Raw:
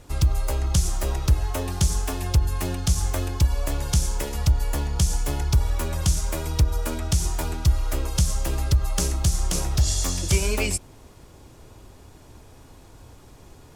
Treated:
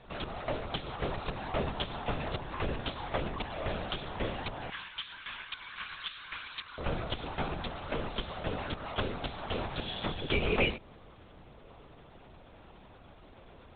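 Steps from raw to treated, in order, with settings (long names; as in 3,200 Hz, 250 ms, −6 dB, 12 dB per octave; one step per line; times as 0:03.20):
high-pass filter 250 Hz 24 dB per octave, from 0:04.70 1,300 Hz, from 0:06.79 230 Hz
linear-prediction vocoder at 8 kHz whisper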